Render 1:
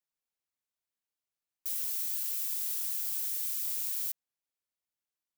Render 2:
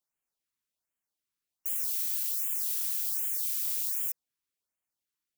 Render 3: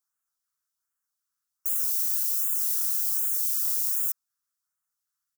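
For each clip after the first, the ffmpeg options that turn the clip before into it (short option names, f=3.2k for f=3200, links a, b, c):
-af "acrusher=bits=7:mode=log:mix=0:aa=0.000001,bandreject=f=490:w=15,afftfilt=real='re*(1-between(b*sr/1024,570*pow(4700/570,0.5+0.5*sin(2*PI*1.3*pts/sr))/1.41,570*pow(4700/570,0.5+0.5*sin(2*PI*1.3*pts/sr))*1.41))':imag='im*(1-between(b*sr/1024,570*pow(4700/570,0.5+0.5*sin(2*PI*1.3*pts/sr))/1.41,570*pow(4700/570,0.5+0.5*sin(2*PI*1.3*pts/sr))*1.41))':win_size=1024:overlap=0.75,volume=2.5dB"
-af "firequalizer=gain_entry='entry(110,0);entry(340,-11);entry(480,-10);entry(1300,14);entry(2300,-6);entry(5500,9)':delay=0.05:min_phase=1,volume=-4dB"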